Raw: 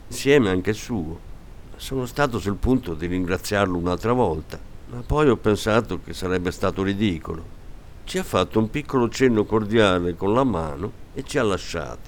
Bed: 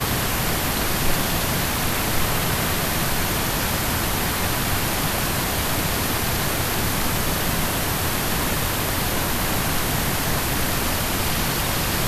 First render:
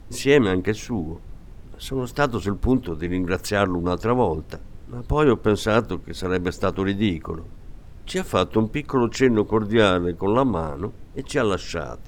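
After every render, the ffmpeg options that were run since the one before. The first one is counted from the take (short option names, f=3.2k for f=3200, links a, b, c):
-af "afftdn=nr=6:nf=-42"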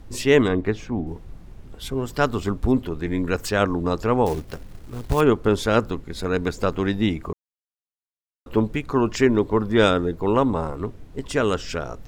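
-filter_complex "[0:a]asettb=1/sr,asplit=3[a][b][c];[a]atrim=end=0.484[d];[b]atrim=start=0.48:end=1.07,asetpts=PTS-STARTPTS,afade=t=in:d=0.004:c=qsin,afade=t=out:st=0.586:d=0.004:c=qsin,aemphasis=mode=reproduction:type=75kf[e];[c]atrim=start=1.066[f];[d][e]acrossfade=d=0.004:c1=hsin:c2=qsin[g];[g][f]acrossfade=d=0.004:c1=qsin:c2=hsin,asettb=1/sr,asplit=3[h][i][j];[h]atrim=end=4.264[k];[i]atrim=start=4.26:end=5.21,asetpts=PTS-STARTPTS,afade=t=in:d=0.004:c=qsin,afade=t=out:st=0.946:d=0.004:c=qsin,acrusher=bits=4:mode=log:mix=0:aa=0.000001[l];[j]atrim=start=5.206[m];[k][l]acrossfade=d=0.004:c1=hsin:c2=qsin[n];[n][m]acrossfade=d=0.004:c1=qsin:c2=hsin,asplit=3[o][p][q];[o]atrim=end=7.33,asetpts=PTS-STARTPTS,afade=t=out:st=7.326:d=0.004:c=hsin[r];[p]atrim=start=7.33:end=8.46,asetpts=PTS-STARTPTS,volume=0[s];[q]atrim=start=8.46,asetpts=PTS-STARTPTS,afade=t=in:d=0.004:c=hsin[t];[r][s][t]concat=n=3:v=0:a=1"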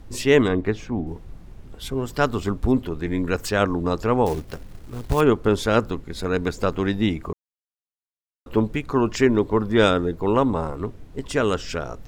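-af anull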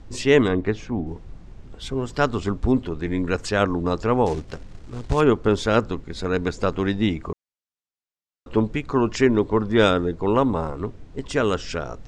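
-af "lowpass=f=7.9k:w=0.5412,lowpass=f=7.9k:w=1.3066"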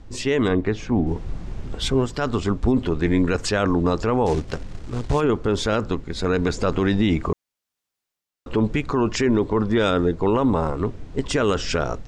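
-af "dynaudnorm=f=260:g=3:m=11dB,alimiter=limit=-10.5dB:level=0:latency=1:release=26"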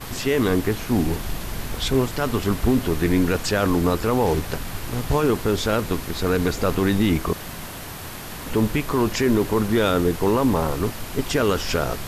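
-filter_complex "[1:a]volume=-12dB[a];[0:a][a]amix=inputs=2:normalize=0"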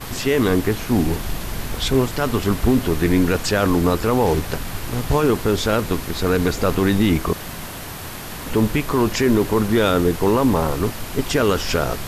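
-af "volume=2.5dB"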